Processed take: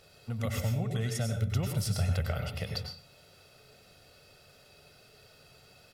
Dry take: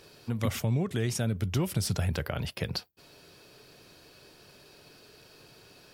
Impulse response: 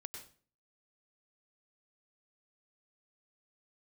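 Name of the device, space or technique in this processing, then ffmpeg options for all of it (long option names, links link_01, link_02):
microphone above a desk: -filter_complex "[0:a]aecho=1:1:1.5:0.62[link_01];[1:a]atrim=start_sample=2205[link_02];[link_01][link_02]afir=irnorm=-1:irlink=0"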